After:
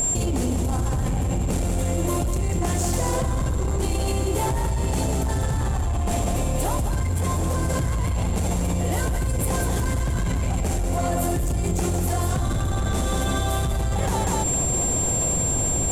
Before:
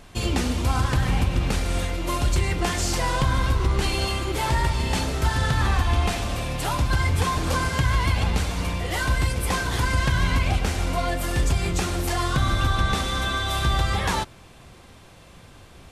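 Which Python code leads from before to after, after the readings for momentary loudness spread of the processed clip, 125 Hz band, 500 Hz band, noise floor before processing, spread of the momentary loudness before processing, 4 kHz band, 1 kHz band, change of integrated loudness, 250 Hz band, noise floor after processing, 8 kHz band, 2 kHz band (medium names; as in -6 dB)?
4 LU, +0.5 dB, +3.0 dB, -48 dBFS, 3 LU, -7.5 dB, -2.5 dB, 0.0 dB, +2.5 dB, -24 dBFS, +9.0 dB, -8.0 dB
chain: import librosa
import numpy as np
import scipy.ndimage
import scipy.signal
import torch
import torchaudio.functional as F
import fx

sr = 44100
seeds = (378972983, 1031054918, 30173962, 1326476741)

p1 = fx.band_shelf(x, sr, hz=2400.0, db=-11.0, octaves=2.7)
p2 = p1 + 10.0 ** (-38.0 / 20.0) * np.sin(2.0 * np.pi * 7400.0 * np.arange(len(p1)) / sr)
p3 = 10.0 ** (-21.0 / 20.0) * np.tanh(p2 / 10.0 ** (-21.0 / 20.0))
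p4 = p3 + fx.echo_single(p3, sr, ms=194, db=-6.0, dry=0)
p5 = fx.env_flatten(p4, sr, amount_pct=100)
y = F.gain(torch.from_numpy(p5), -1.5).numpy()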